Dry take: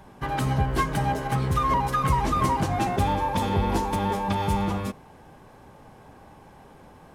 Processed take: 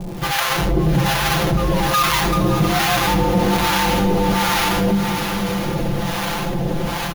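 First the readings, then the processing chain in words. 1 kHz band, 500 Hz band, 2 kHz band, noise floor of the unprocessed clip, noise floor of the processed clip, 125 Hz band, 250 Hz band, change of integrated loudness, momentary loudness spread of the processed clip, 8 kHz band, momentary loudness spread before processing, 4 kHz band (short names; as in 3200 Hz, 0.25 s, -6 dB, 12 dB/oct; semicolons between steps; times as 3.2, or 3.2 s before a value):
+5.0 dB, +9.5 dB, +13.0 dB, -50 dBFS, -24 dBFS, +6.0 dB, +10.0 dB, +7.0 dB, 6 LU, +14.5 dB, 5 LU, +16.5 dB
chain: half-waves squared off; bell 7900 Hz -9 dB 0.3 oct; comb 5.9 ms, depth 81%; de-hum 66.15 Hz, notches 7; AGC gain up to 16 dB; limiter -9 dBFS, peak gain reduction 8 dB; harmonic tremolo 1.2 Hz, depth 100%, crossover 720 Hz; crackle 350/s -45 dBFS; on a send: diffused feedback echo 0.589 s, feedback 48%, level -9.5 dB; on the sum: shoebox room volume 2900 m³, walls furnished, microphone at 0.91 m; fast leveller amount 50%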